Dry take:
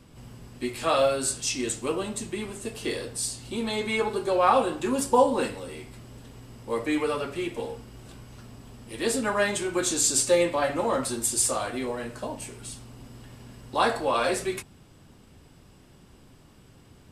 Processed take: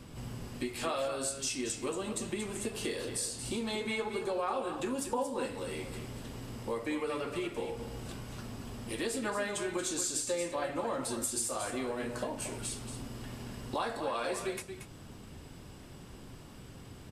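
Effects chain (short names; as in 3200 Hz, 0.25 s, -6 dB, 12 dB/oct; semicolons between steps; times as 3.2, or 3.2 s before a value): compressor 4:1, threshold -38 dBFS, peak gain reduction 19.5 dB; on a send: echo 0.23 s -9 dB; on the sum: gain +3.5 dB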